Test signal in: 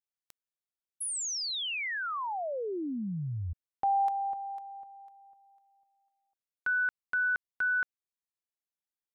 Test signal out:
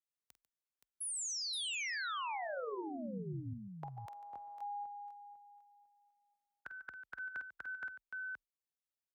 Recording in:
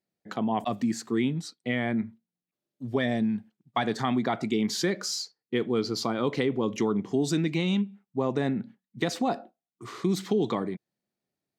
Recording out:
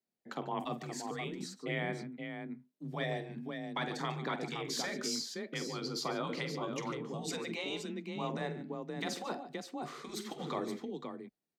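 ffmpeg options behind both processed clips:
-af "aecho=1:1:48|145|522:0.237|0.158|0.376,afreqshift=27,afftfilt=real='re*lt(hypot(re,im),0.282)':imag='im*lt(hypot(re,im),0.282)':win_size=1024:overlap=0.75,volume=0.501"

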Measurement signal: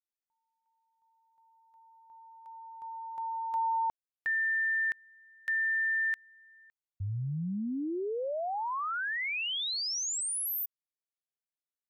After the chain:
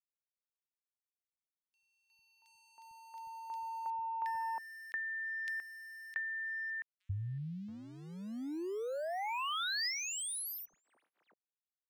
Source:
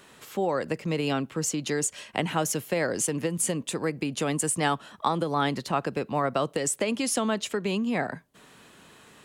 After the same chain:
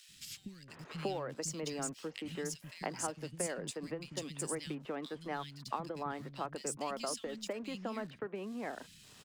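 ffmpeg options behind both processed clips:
-filter_complex "[0:a]lowpass=10000,equalizer=f=5000:w=5.7:g=7.5,acompressor=threshold=0.0112:ratio=8:attack=79:release=642:knee=6:detection=rms,aeval=exprs='sgn(val(0))*max(abs(val(0))-0.00106,0)':c=same,acrossover=split=200|2400[s0][s1][s2];[s0]adelay=90[s3];[s1]adelay=680[s4];[s3][s4][s2]amix=inputs=3:normalize=0,volume=1.41"

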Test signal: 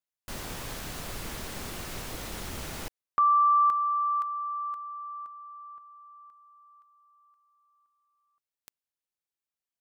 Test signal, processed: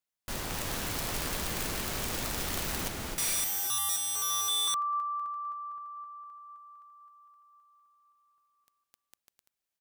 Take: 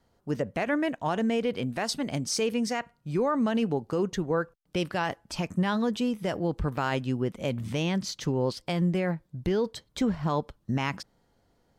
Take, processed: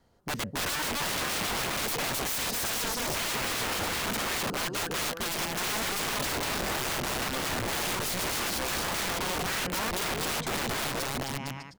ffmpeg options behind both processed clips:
-af "aecho=1:1:260|455|601.2|710.9|793.2:0.631|0.398|0.251|0.158|0.1,aeval=exprs='(mod(25.1*val(0)+1,2)-1)/25.1':c=same,volume=1.26"

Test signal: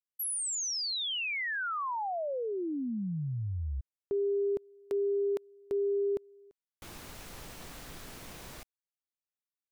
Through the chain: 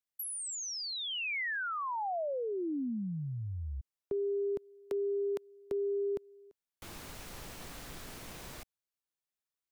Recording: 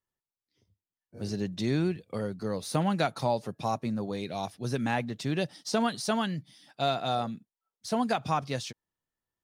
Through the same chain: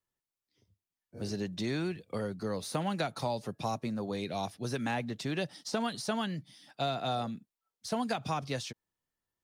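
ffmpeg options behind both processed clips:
-filter_complex "[0:a]acrossover=split=280|710|2200[s0][s1][s2][s3];[s0]acompressor=threshold=0.0141:ratio=4[s4];[s1]acompressor=threshold=0.0158:ratio=4[s5];[s2]acompressor=threshold=0.0141:ratio=4[s6];[s3]acompressor=threshold=0.0112:ratio=4[s7];[s4][s5][s6][s7]amix=inputs=4:normalize=0"

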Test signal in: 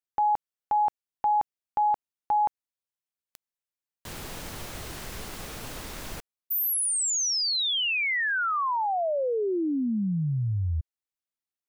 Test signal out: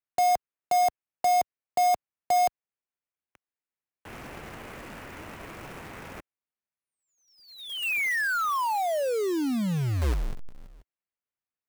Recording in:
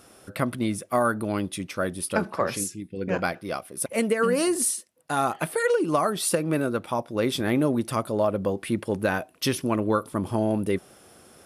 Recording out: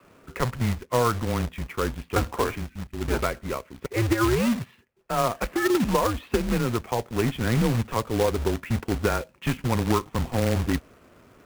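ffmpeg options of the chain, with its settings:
-af "adynamicequalizer=threshold=0.00891:dfrequency=180:dqfactor=2.5:tfrequency=180:tqfactor=2.5:attack=5:release=100:ratio=0.375:range=2:mode=boostabove:tftype=bell,highpass=f=160:t=q:w=0.5412,highpass=f=160:t=q:w=1.307,lowpass=f=2800:t=q:w=0.5176,lowpass=f=2800:t=q:w=0.7071,lowpass=f=2800:t=q:w=1.932,afreqshift=-120,acrusher=bits=2:mode=log:mix=0:aa=0.000001"

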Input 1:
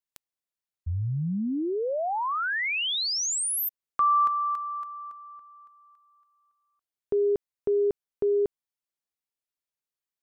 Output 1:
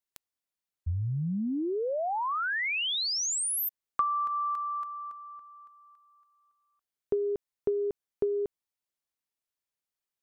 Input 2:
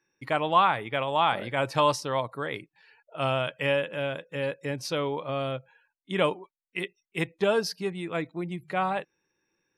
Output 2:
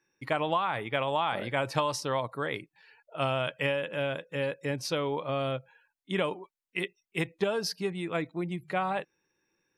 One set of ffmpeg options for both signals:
-af "acompressor=threshold=0.0282:ratio=6:attack=83:release=109:knee=1:detection=peak"

